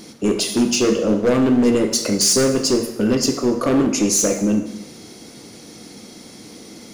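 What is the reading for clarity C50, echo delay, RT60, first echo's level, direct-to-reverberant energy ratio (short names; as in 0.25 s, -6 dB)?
9.0 dB, none, 0.95 s, none, 6.5 dB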